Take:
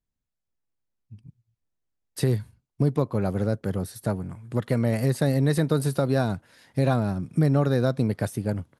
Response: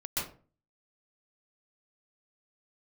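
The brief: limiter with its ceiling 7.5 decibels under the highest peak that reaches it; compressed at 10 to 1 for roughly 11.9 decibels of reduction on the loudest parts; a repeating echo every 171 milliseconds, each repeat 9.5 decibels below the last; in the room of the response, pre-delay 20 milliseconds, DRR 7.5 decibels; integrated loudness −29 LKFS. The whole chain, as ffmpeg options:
-filter_complex "[0:a]acompressor=threshold=-29dB:ratio=10,alimiter=level_in=1dB:limit=-24dB:level=0:latency=1,volume=-1dB,aecho=1:1:171|342|513|684:0.335|0.111|0.0365|0.012,asplit=2[link_01][link_02];[1:a]atrim=start_sample=2205,adelay=20[link_03];[link_02][link_03]afir=irnorm=-1:irlink=0,volume=-12.5dB[link_04];[link_01][link_04]amix=inputs=2:normalize=0,volume=6.5dB"

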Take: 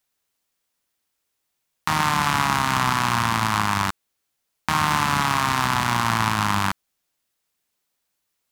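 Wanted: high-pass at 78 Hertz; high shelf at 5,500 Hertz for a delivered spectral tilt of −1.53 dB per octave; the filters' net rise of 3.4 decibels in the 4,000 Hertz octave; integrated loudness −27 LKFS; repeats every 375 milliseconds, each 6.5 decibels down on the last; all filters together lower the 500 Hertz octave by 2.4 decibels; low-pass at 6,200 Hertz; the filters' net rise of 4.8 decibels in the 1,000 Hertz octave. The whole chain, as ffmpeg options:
ffmpeg -i in.wav -af "highpass=78,lowpass=6200,equalizer=frequency=500:width_type=o:gain=-7.5,equalizer=frequency=1000:width_type=o:gain=7,equalizer=frequency=4000:width_type=o:gain=7.5,highshelf=frequency=5500:gain=-7.5,aecho=1:1:375|750|1125|1500|1875|2250:0.473|0.222|0.105|0.0491|0.0231|0.0109,volume=-9.5dB" out.wav

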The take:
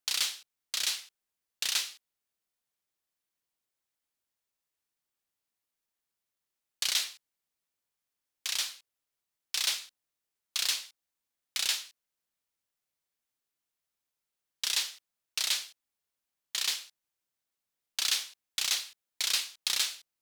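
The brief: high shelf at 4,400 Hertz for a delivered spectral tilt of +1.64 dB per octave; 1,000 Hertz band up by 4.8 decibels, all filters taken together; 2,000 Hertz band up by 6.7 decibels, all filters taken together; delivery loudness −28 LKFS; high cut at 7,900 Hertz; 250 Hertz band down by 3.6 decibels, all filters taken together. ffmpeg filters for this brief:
ffmpeg -i in.wav -af "lowpass=7900,equalizer=frequency=250:width_type=o:gain=-5.5,equalizer=frequency=1000:width_type=o:gain=3.5,equalizer=frequency=2000:width_type=o:gain=6.5,highshelf=frequency=4400:gain=5.5,volume=-0.5dB" out.wav

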